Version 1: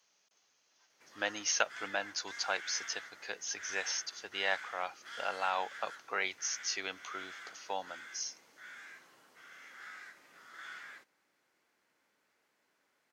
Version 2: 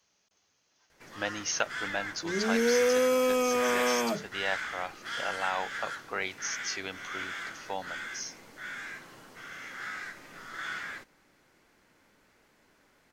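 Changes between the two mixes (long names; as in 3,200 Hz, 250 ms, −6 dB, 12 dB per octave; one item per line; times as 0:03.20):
first sound +10.0 dB
second sound: unmuted
master: remove high-pass filter 490 Hz 6 dB per octave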